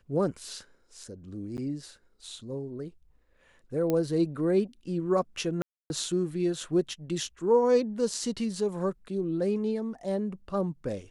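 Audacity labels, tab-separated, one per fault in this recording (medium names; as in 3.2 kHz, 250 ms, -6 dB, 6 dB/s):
1.570000	1.580000	dropout 9.4 ms
3.900000	3.900000	pop -15 dBFS
5.620000	5.900000	dropout 281 ms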